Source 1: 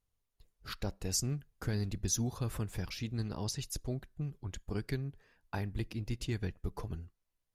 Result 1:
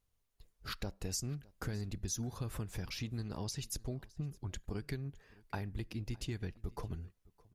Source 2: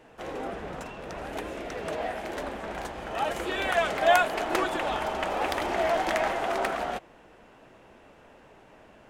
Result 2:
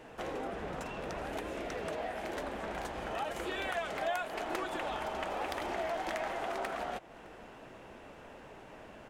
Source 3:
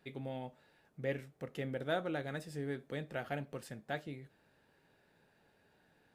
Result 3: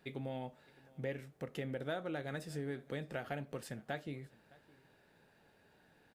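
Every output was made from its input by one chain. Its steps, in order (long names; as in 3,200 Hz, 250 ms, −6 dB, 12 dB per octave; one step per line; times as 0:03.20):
downward compressor 3 to 1, threshold −40 dBFS
on a send: single-tap delay 612 ms −23.5 dB
on the sum: level +2.5 dB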